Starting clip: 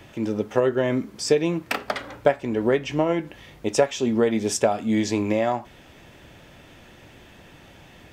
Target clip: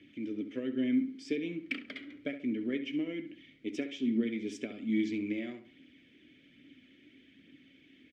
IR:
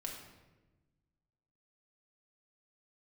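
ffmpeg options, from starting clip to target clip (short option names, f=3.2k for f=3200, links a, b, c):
-filter_complex "[0:a]asplit=3[a][b][c];[a]bandpass=f=270:t=q:w=8,volume=0dB[d];[b]bandpass=f=2.29k:t=q:w=8,volume=-6dB[e];[c]bandpass=f=3.01k:t=q:w=8,volume=-9dB[f];[d][e][f]amix=inputs=3:normalize=0,aphaser=in_gain=1:out_gain=1:delay=3.2:decay=0.32:speed=1.2:type=triangular,asplit=2[g][h];[h]adelay=68,lowpass=f=2.3k:p=1,volume=-10dB,asplit=2[i][j];[j]adelay=68,lowpass=f=2.3k:p=1,volume=0.37,asplit=2[k][l];[l]adelay=68,lowpass=f=2.3k:p=1,volume=0.37,asplit=2[m][n];[n]adelay=68,lowpass=f=2.3k:p=1,volume=0.37[o];[g][i][k][m][o]amix=inputs=5:normalize=0"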